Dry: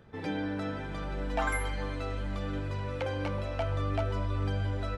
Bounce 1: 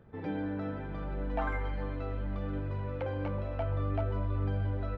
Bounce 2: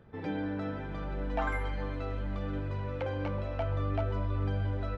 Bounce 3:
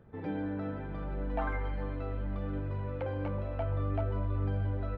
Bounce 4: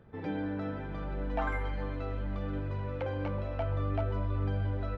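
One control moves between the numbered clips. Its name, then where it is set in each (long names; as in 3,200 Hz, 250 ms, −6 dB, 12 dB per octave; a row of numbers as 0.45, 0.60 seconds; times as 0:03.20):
head-to-tape spacing loss, at 10 kHz: 36, 20, 45, 28 decibels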